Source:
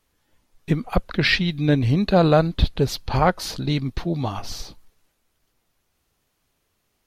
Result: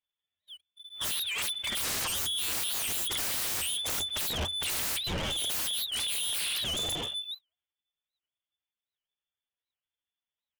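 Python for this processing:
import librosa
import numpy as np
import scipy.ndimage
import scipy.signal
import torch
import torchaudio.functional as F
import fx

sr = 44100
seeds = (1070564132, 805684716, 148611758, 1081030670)

y = fx.pitch_glide(x, sr, semitones=-9.0, runs='starting unshifted')
y = fx.noise_reduce_blind(y, sr, reduce_db=19)
y = fx.stretch_vocoder(y, sr, factor=1.5)
y = fx.freq_invert(y, sr, carrier_hz=3500)
y = fx.peak_eq(y, sr, hz=280.0, db=-4.5, octaves=1.0)
y = (np.mod(10.0 ** (16.5 / 20.0) * y + 1.0, 2.0) - 1.0) / 10.0 ** (16.5 / 20.0)
y = fx.notch(y, sr, hz=1100.0, q=17.0)
y = 10.0 ** (-31.5 / 20.0) * (np.abs((y / 10.0 ** (-31.5 / 20.0) + 3.0) % 4.0 - 2.0) - 1.0)
y = fx.leveller(y, sr, passes=3)
y = fx.peak_eq(y, sr, hz=87.0, db=9.0, octaves=0.26)
y = fx.record_warp(y, sr, rpm=78.0, depth_cents=250.0)
y = y * librosa.db_to_amplitude(2.0)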